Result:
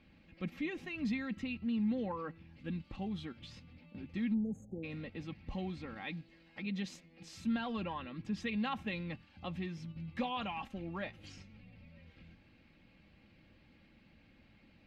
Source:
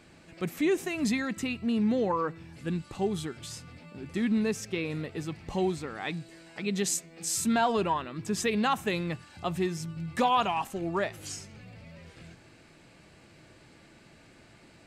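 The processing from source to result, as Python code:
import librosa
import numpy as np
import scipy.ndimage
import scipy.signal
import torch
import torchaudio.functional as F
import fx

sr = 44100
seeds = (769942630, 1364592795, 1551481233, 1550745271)

p1 = fx.spec_erase(x, sr, start_s=4.34, length_s=0.5, low_hz=850.0, high_hz=6300.0)
p2 = p1 + 0.59 * np.pad(p1, (int(3.7 * sr / 1000.0), 0))[:len(p1)]
p3 = fx.hpss(p2, sr, part='harmonic', gain_db=-4)
p4 = fx.band_shelf(p3, sr, hz=690.0, db=-8.5, octaves=2.9)
p5 = fx.level_steps(p4, sr, step_db=24)
p6 = p4 + F.gain(torch.from_numpy(p5), -0.5).numpy()
p7 = fx.cheby_harmonics(p6, sr, harmonics=(2, 8), levels_db=(-25, -39), full_scale_db=-16.5)
p8 = fx.air_absorb(p7, sr, metres=310.0)
y = F.gain(torch.from_numpy(p8), -3.5).numpy()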